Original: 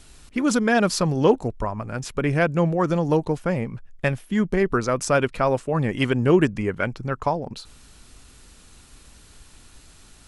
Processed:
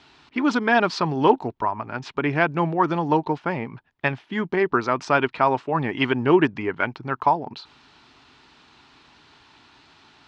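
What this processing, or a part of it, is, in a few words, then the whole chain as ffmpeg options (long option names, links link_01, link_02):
kitchen radio: -af "highpass=190,equalizer=frequency=200:width_type=q:width=4:gain=-8,equalizer=frequency=520:width_type=q:width=4:gain=-10,equalizer=frequency=910:width_type=q:width=4:gain=7,lowpass=frequency=4300:width=0.5412,lowpass=frequency=4300:width=1.3066,volume=2.5dB"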